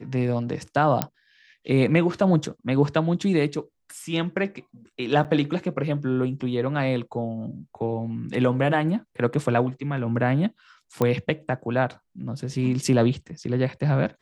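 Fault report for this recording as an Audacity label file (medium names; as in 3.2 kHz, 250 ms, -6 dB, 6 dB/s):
1.020000	1.020000	pop -6 dBFS
5.240000	5.250000	dropout 8 ms
11.020000	11.020000	pop -10 dBFS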